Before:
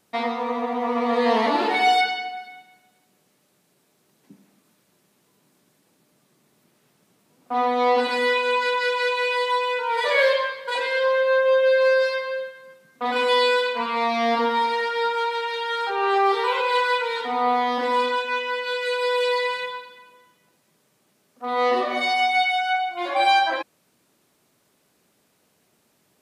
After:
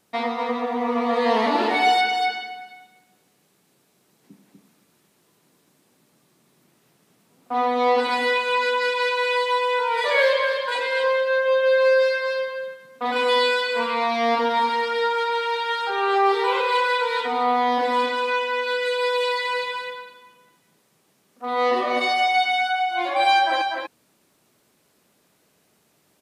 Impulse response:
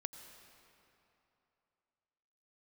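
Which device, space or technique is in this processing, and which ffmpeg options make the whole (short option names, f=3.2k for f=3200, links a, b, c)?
ducked delay: -filter_complex "[0:a]asplit=3[a][b][c];[b]adelay=244,volume=-3.5dB[d];[c]apad=whole_len=1167052[e];[d][e]sidechaincompress=threshold=-22dB:ratio=8:attack=6.6:release=390[f];[a][f]amix=inputs=2:normalize=0"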